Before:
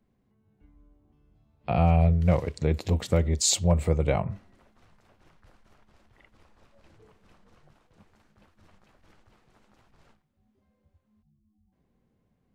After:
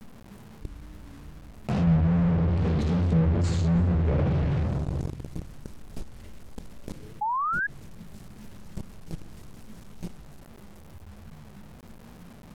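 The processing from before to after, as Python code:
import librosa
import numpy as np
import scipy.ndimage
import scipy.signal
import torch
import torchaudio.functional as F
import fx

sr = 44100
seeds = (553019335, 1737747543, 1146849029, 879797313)

p1 = fx.curve_eq(x, sr, hz=(230.0, 1300.0, 9900.0), db=(0, -15, 7))
p2 = p1 + fx.echo_heads(p1, sr, ms=82, heads='first and third', feedback_pct=41, wet_db=-18, dry=0)
p3 = fx.chopper(p2, sr, hz=3.2, depth_pct=65, duty_pct=15)
p4 = fx.tilt_shelf(p3, sr, db=4.5, hz=900.0)
p5 = fx.room_shoebox(p4, sr, seeds[0], volume_m3=530.0, walls='mixed', distance_m=1.4)
p6 = fx.fuzz(p5, sr, gain_db=45.0, gate_db=-45.0)
p7 = p5 + (p6 * 10.0 ** (-10.5 / 20.0))
p8 = fx.quant_companded(p7, sr, bits=6)
p9 = fx.env_lowpass_down(p8, sr, base_hz=2200.0, full_db=-15.0)
p10 = fx.vibrato(p9, sr, rate_hz=2.4, depth_cents=74.0)
p11 = fx.spec_paint(p10, sr, seeds[1], shape='rise', start_s=7.21, length_s=0.46, low_hz=820.0, high_hz=1700.0, level_db=-26.0)
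p12 = fx.env_flatten(p11, sr, amount_pct=50)
y = p12 * 10.0 ** (-9.0 / 20.0)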